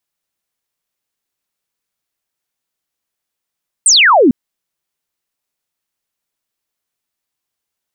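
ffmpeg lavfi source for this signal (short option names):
-f lavfi -i "aevalsrc='0.562*clip(t/0.002,0,1)*clip((0.45-t)/0.002,0,1)*sin(2*PI*9200*0.45/log(220/9200)*(exp(log(220/9200)*t/0.45)-1))':d=0.45:s=44100"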